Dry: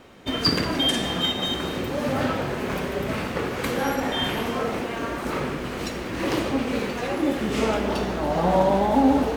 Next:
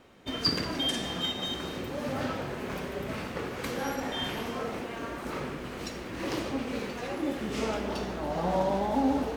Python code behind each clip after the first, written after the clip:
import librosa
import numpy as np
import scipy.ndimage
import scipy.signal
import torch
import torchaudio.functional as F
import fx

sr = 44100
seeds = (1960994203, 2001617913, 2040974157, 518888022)

y = fx.dynamic_eq(x, sr, hz=5400.0, q=1.7, threshold_db=-43.0, ratio=4.0, max_db=4)
y = y * 10.0 ** (-8.0 / 20.0)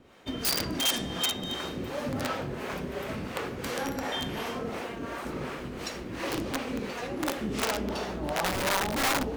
y = (np.mod(10.0 ** (22.5 / 20.0) * x + 1.0, 2.0) - 1.0) / 10.0 ** (22.5 / 20.0)
y = fx.harmonic_tremolo(y, sr, hz=2.8, depth_pct=70, crossover_hz=420.0)
y = y * 10.0 ** (4.0 / 20.0)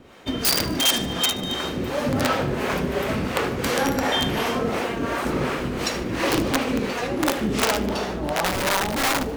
y = fx.rider(x, sr, range_db=4, speed_s=2.0)
y = fx.echo_feedback(y, sr, ms=75, feedback_pct=49, wet_db=-19)
y = y * 10.0 ** (7.5 / 20.0)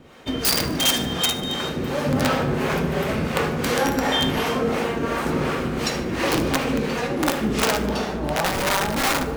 y = fx.rev_fdn(x, sr, rt60_s=1.4, lf_ratio=1.55, hf_ratio=0.4, size_ms=38.0, drr_db=8.0)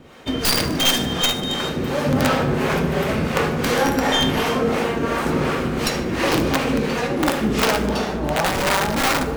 y = fx.tracing_dist(x, sr, depth_ms=0.11)
y = y * 10.0 ** (2.5 / 20.0)